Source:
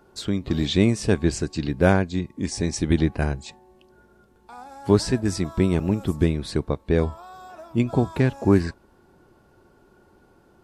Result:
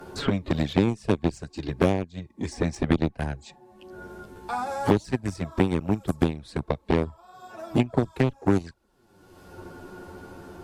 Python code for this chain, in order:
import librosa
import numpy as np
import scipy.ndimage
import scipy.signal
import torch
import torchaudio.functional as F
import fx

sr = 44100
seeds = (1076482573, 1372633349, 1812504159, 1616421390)

y = fx.env_flanger(x, sr, rest_ms=11.7, full_db=-14.5)
y = fx.cheby_harmonics(y, sr, harmonics=(7,), levels_db=(-19,), full_scale_db=-5.0)
y = fx.band_squash(y, sr, depth_pct=100)